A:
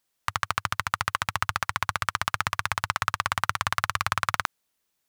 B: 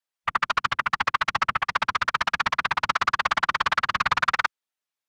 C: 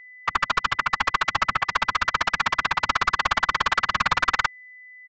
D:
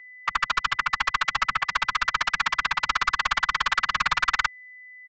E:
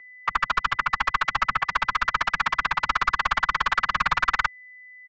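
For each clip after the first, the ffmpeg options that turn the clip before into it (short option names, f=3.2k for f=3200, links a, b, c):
-filter_complex "[0:a]afwtdn=0.0112,afftfilt=real='hypot(re,im)*cos(2*PI*random(0))':imag='hypot(re,im)*sin(2*PI*random(1))':win_size=512:overlap=0.75,asplit=2[a][b];[b]highpass=f=720:p=1,volume=14dB,asoftclip=type=tanh:threshold=-13.5dB[c];[a][c]amix=inputs=2:normalize=0,lowpass=f=4.2k:p=1,volume=-6dB,volume=5dB"
-af "agate=range=-33dB:threshold=-53dB:ratio=3:detection=peak,aeval=exprs='val(0)+0.00562*sin(2*PI*2000*n/s)':c=same,aresample=16000,aeval=exprs='clip(val(0),-1,0.126)':c=same,aresample=44100,volume=2dB"
-filter_complex "[0:a]equalizer=f=85:t=o:w=0.64:g=-14,acrossover=split=150|960[a][b][c];[b]acompressor=threshold=-40dB:ratio=6[d];[a][d][c]amix=inputs=3:normalize=0"
-af "highshelf=f=2.2k:g=-11.5,volume=4.5dB"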